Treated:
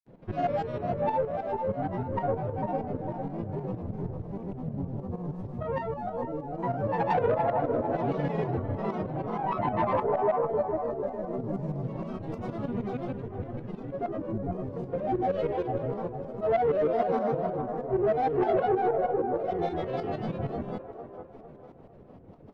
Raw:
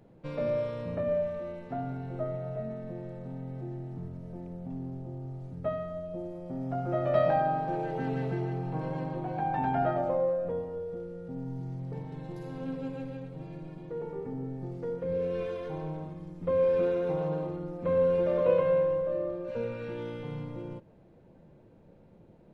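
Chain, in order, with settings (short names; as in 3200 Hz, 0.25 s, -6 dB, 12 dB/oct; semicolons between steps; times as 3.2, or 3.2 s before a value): LPF 3400 Hz 6 dB/oct; in parallel at +1.5 dB: vocal rider within 4 dB 2 s; on the sum: grains, pitch spread up and down by 7 st; tremolo saw up 6.4 Hz, depth 70%; soft clip -18 dBFS, distortion -18 dB; on a send: band-limited delay 0.452 s, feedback 40%, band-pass 710 Hz, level -5 dB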